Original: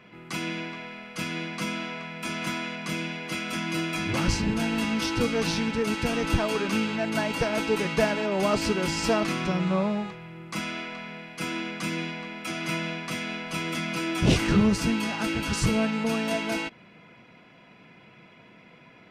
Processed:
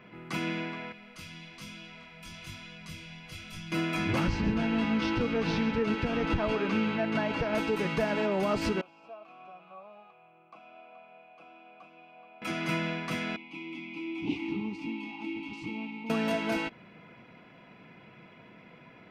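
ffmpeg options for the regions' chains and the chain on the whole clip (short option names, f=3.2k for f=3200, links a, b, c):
-filter_complex "[0:a]asettb=1/sr,asplit=3[a][b][c];[a]atrim=end=0.924[d];[b]atrim=start=0.92:end=3.72,asetpts=PTS-STARTPTS,afade=t=in:d=0.004:c=qsin,afade=t=out:st=2.796:d=0.004:c=qsin,asubboost=boost=11:cutoff=87,acrossover=split=130|3000[e][f][g];[f]acompressor=threshold=-47dB:ratio=5:attack=3.2:release=140:knee=2.83:detection=peak[h];[e][h][g]amix=inputs=3:normalize=0,flanger=delay=18.5:depth=4.8:speed=1.1[i];[c]atrim=start=3.716[j];[d][i]acrossfade=d=0.004:c1=hsin:c2=qsin[k];[k][j]acrossfade=d=0.004:c1=qsin:c2=hsin,asettb=1/sr,asplit=3[l][m][n];[l]atrim=end=4.294[o];[m]atrim=start=4.29:end=7.55,asetpts=PTS-STARTPTS,afade=t=in:d=0.004:c=qsin,afade=t=out:st=3.256:d=0.004:c=qsin,lowpass=4.4k,aecho=1:1:138:0.211,atrim=end_sample=143766[p];[n]atrim=start=7.546[q];[o][p]acrossfade=d=0.004:c1=hsin:c2=qsin[r];[r][q]acrossfade=d=0.004:c1=qsin:c2=hsin,asettb=1/sr,asplit=3[s][t][u];[s]atrim=end=8.814[v];[t]atrim=start=8.81:end=12.42,asetpts=PTS-STARTPTS,afade=t=in:d=0.004:c=qsin,afade=t=out:st=3.606:d=0.004:c=qsin,acrossover=split=94|980[w][x][y];[w]acompressor=threshold=-57dB:ratio=4[z];[x]acompressor=threshold=-38dB:ratio=4[aa];[y]acompressor=threshold=-42dB:ratio=4[ab];[z][aa][ab]amix=inputs=3:normalize=0,asplit=3[ac][ad][ae];[ac]bandpass=f=730:t=q:w=8,volume=0dB[af];[ad]bandpass=f=1.09k:t=q:w=8,volume=-6dB[ag];[ae]bandpass=f=2.44k:t=q:w=8,volume=-9dB[ah];[af][ag][ah]amix=inputs=3:normalize=0[ai];[u]atrim=start=12.416[aj];[v][ai]acrossfade=d=0.004:c1=hsin:c2=qsin[ak];[ak][aj]acrossfade=d=0.004:c1=qsin:c2=hsin,asettb=1/sr,asplit=3[al][am][an];[al]atrim=end=13.364[ao];[am]atrim=start=13.36:end=16.1,asetpts=PTS-STARTPTS,afade=t=in:d=0.004:c=qsin,afade=t=out:st=2.736:d=0.004:c=qsin,asplit=3[ap][aq][ar];[ap]bandpass=f=300:t=q:w=8,volume=0dB[as];[aq]bandpass=f=870:t=q:w=8,volume=-6dB[at];[ar]bandpass=f=2.24k:t=q:w=8,volume=-9dB[au];[as][at][au]amix=inputs=3:normalize=0,highshelf=f=2.2k:t=q:w=1.5:g=8[av];[an]atrim=start=16.096[aw];[ao][av]acrossfade=d=0.004:c1=hsin:c2=qsin[ax];[ax][aw]acrossfade=d=0.004:c1=qsin:c2=hsin,equalizer=f=8.3k:t=o:w=2:g=-9,alimiter=limit=-19dB:level=0:latency=1:release=144"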